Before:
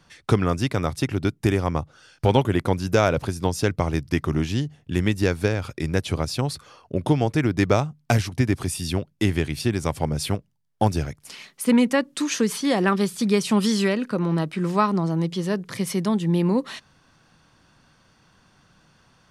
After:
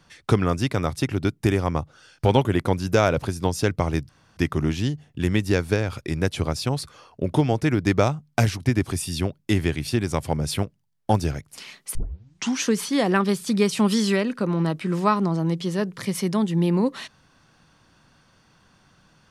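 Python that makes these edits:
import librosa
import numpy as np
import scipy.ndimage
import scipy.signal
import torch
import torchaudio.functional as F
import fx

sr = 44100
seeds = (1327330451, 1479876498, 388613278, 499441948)

y = fx.edit(x, sr, fx.insert_room_tone(at_s=4.09, length_s=0.28),
    fx.tape_start(start_s=11.67, length_s=0.67), tone=tone)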